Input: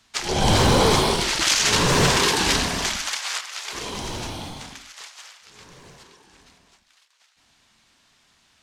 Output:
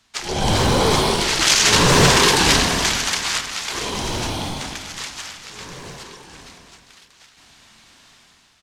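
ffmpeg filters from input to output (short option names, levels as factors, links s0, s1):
-af "dynaudnorm=f=810:g=3:m=3.98,aecho=1:1:441|882|1323|1764:0.2|0.0738|0.0273|0.0101,volume=0.891"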